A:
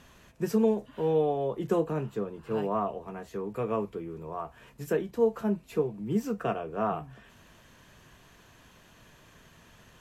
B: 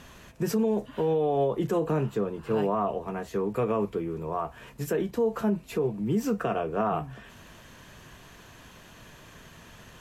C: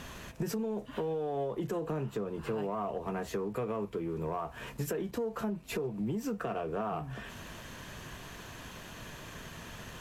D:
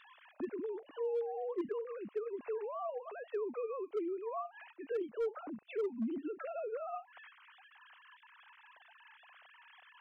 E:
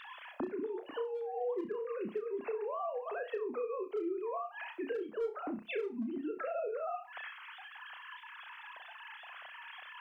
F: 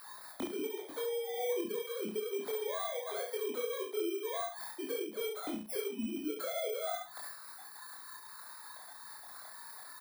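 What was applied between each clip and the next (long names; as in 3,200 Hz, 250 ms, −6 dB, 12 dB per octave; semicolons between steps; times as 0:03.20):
brickwall limiter −24.5 dBFS, peak gain reduction 10 dB; level +6.5 dB
downward compressor 12 to 1, threshold −34 dBFS, peak gain reduction 13 dB; leveller curve on the samples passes 1
three sine waves on the formant tracks; gain into a clipping stage and back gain 26 dB; level −4 dB
downward compressor 6 to 1, threshold −46 dBFS, peak gain reduction 13 dB; on a send: flutter between parallel walls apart 5.6 metres, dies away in 0.26 s; on the sum: level +10 dB
samples in bit-reversed order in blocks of 16 samples; ambience of single reflections 23 ms −3 dB, 70 ms −6.5 dB; noise in a band 95–370 Hz −79 dBFS; level −2 dB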